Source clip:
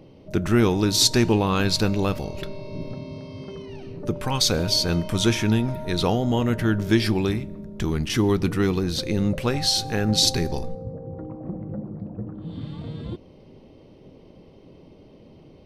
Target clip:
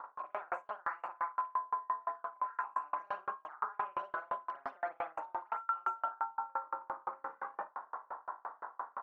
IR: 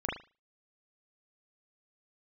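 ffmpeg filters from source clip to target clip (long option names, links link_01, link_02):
-filter_complex "[0:a]asplit=2[link_01][link_02];[link_02]acompressor=mode=upward:threshold=-23dB:ratio=2.5,volume=-2dB[link_03];[link_01][link_03]amix=inputs=2:normalize=0,asetrate=76440,aresample=44100,asuperpass=centerf=1200:order=4:qfactor=2.3,aecho=1:1:56|291:0.596|0.119,areverse,acompressor=threshold=-40dB:ratio=5,areverse[link_04];[1:a]atrim=start_sample=2205,atrim=end_sample=3969[link_05];[link_04][link_05]afir=irnorm=-1:irlink=0,aeval=exprs='val(0)*pow(10,-37*if(lt(mod(5.8*n/s,1),2*abs(5.8)/1000),1-mod(5.8*n/s,1)/(2*abs(5.8)/1000),(mod(5.8*n/s,1)-2*abs(5.8)/1000)/(1-2*abs(5.8)/1000))/20)':channel_layout=same,volume=4dB"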